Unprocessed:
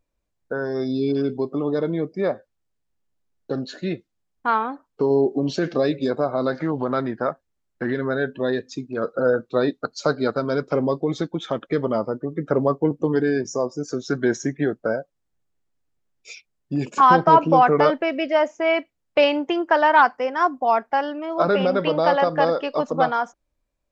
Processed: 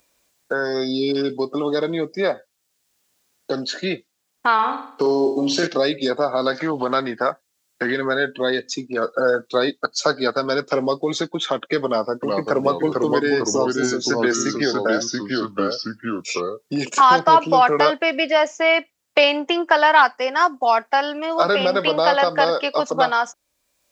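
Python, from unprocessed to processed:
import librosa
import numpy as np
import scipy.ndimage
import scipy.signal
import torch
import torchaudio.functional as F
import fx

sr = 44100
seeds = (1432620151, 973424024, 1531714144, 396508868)

y = fx.room_flutter(x, sr, wall_m=8.0, rt60_s=0.51, at=(4.54, 5.67))
y = fx.echo_pitch(y, sr, ms=365, semitones=-2, count=2, db_per_echo=-3.0, at=(11.86, 17.19))
y = fx.highpass(y, sr, hz=380.0, slope=6)
y = fx.high_shelf(y, sr, hz=2500.0, db=11.5)
y = fx.band_squash(y, sr, depth_pct=40)
y = y * 10.0 ** (2.5 / 20.0)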